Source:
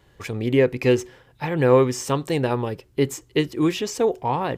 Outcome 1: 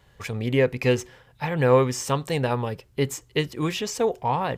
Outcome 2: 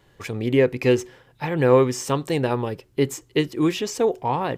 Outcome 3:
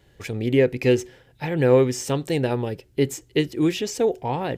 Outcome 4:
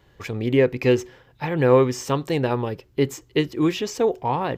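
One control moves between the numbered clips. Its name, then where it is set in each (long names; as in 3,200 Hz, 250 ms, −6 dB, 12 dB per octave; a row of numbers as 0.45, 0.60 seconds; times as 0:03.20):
parametric band, centre frequency: 330, 62, 1,100, 9,500 Hertz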